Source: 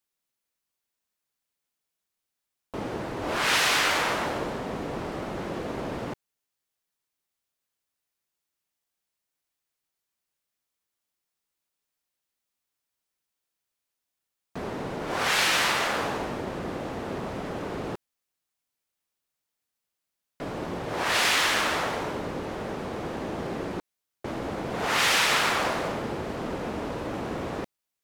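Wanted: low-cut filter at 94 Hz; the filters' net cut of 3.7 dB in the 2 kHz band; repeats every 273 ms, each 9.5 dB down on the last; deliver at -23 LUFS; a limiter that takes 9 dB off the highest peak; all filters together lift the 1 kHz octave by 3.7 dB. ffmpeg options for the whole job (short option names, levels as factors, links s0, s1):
-af "highpass=94,equalizer=f=1000:t=o:g=6.5,equalizer=f=2000:t=o:g=-7,alimiter=limit=0.106:level=0:latency=1,aecho=1:1:273|546|819|1092:0.335|0.111|0.0365|0.012,volume=2.24"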